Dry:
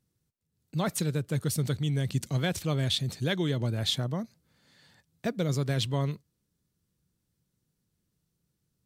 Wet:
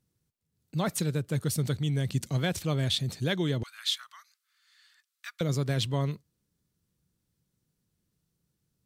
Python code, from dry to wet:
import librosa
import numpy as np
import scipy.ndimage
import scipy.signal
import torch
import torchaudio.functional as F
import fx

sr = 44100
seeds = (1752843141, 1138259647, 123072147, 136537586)

y = fx.ellip_highpass(x, sr, hz=1200.0, order=4, stop_db=60, at=(3.63, 5.41))